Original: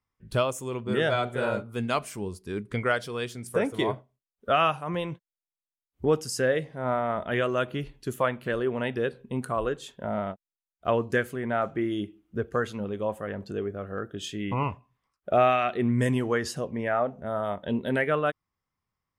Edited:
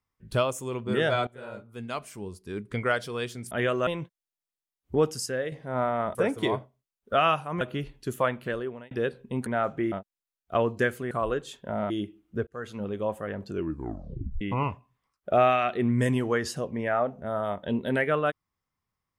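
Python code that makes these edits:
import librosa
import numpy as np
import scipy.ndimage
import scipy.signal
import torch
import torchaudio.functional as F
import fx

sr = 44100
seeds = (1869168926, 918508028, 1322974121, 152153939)

y = fx.edit(x, sr, fx.fade_in_from(start_s=1.27, length_s=1.74, floor_db=-18.5),
    fx.swap(start_s=3.51, length_s=1.46, other_s=7.25, other_length_s=0.36),
    fx.clip_gain(start_s=6.36, length_s=0.26, db=-6.0),
    fx.fade_out_span(start_s=8.4, length_s=0.51),
    fx.swap(start_s=9.46, length_s=0.79, other_s=11.44, other_length_s=0.46),
    fx.fade_in_span(start_s=12.47, length_s=0.39),
    fx.tape_stop(start_s=13.5, length_s=0.91), tone=tone)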